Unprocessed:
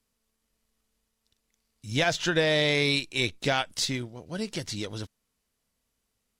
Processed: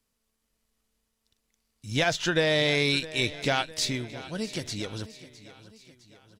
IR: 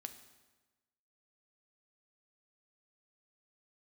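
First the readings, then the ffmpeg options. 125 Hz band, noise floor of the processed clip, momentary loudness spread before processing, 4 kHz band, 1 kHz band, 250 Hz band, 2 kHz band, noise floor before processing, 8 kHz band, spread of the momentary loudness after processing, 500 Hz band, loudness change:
0.0 dB, -78 dBFS, 14 LU, 0.0 dB, 0.0 dB, 0.0 dB, 0.0 dB, -79 dBFS, 0.0 dB, 13 LU, 0.0 dB, 0.0 dB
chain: -af "aecho=1:1:659|1318|1977|2636:0.141|0.072|0.0367|0.0187"

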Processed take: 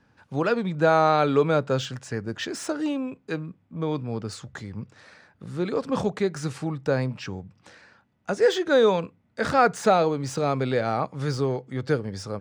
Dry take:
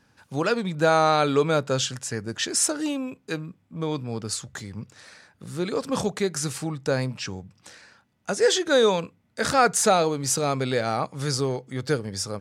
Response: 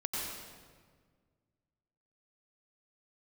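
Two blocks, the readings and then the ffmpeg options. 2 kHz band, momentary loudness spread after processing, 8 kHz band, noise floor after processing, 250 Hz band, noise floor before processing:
-1.0 dB, 17 LU, -14.0 dB, -65 dBFS, +1.0 dB, -65 dBFS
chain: -filter_complex "[0:a]aemphasis=mode=reproduction:type=75fm,acrossover=split=480|4200[s0][s1][s2];[s2]asoftclip=type=tanh:threshold=0.0178[s3];[s0][s1][s3]amix=inputs=3:normalize=0"

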